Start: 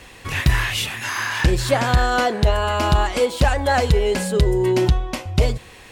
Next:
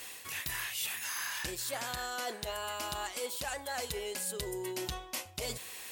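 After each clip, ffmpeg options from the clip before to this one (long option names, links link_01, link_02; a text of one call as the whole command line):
ffmpeg -i in.wav -af "aemphasis=mode=production:type=riaa,areverse,acompressor=threshold=-28dB:ratio=5,areverse,volume=-7.5dB" out.wav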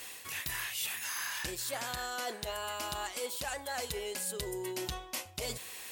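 ffmpeg -i in.wav -af anull out.wav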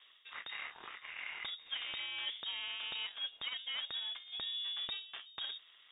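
ffmpeg -i in.wav -af "adynamicsmooth=sensitivity=6.5:basefreq=590,lowpass=frequency=3200:width_type=q:width=0.5098,lowpass=frequency=3200:width_type=q:width=0.6013,lowpass=frequency=3200:width_type=q:width=0.9,lowpass=frequency=3200:width_type=q:width=2.563,afreqshift=-3800,volume=-1.5dB" out.wav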